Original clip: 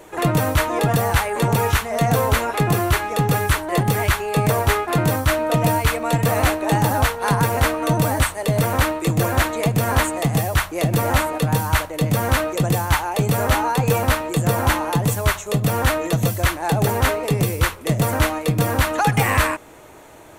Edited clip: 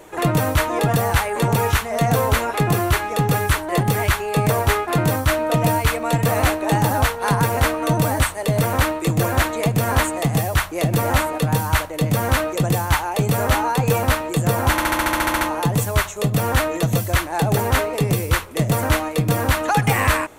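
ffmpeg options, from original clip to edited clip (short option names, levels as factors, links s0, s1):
-filter_complex "[0:a]asplit=11[s0][s1][s2][s3][s4][s5][s6][s7][s8][s9][s10];[s0]atrim=end=14.782[s11];[s1]atrim=start=14.708:end=14.782[s12];[s2]atrim=start=14.708:end=14.782[s13];[s3]atrim=start=14.708:end=14.782[s14];[s4]atrim=start=14.708:end=14.782[s15];[s5]atrim=start=14.708:end=14.782[s16];[s6]atrim=start=14.708:end=14.782[s17];[s7]atrim=start=14.708:end=14.782[s18];[s8]atrim=start=14.708:end=14.782[s19];[s9]atrim=start=14.708:end=14.782[s20];[s10]atrim=start=14.708[s21];[s11][s12]acrossfade=d=0.004:c1=hsin:c2=hsin[s22];[s22][s13]acrossfade=d=0.004:c1=hsin:c2=hsin[s23];[s23][s14]acrossfade=d=0.004:c1=hsin:c2=hsin[s24];[s24][s15]acrossfade=d=0.004:c1=hsin:c2=hsin[s25];[s25][s16]acrossfade=d=0.004:c1=hsin:c2=hsin[s26];[s26][s17]acrossfade=d=0.004:c1=hsin:c2=hsin[s27];[s27][s18]acrossfade=d=0.004:c1=hsin:c2=hsin[s28];[s28][s19]acrossfade=d=0.004:c1=hsin:c2=hsin[s29];[s29][s20]acrossfade=d=0.004:c1=hsin:c2=hsin[s30];[s30][s21]acrossfade=d=0.004:c1=hsin:c2=hsin"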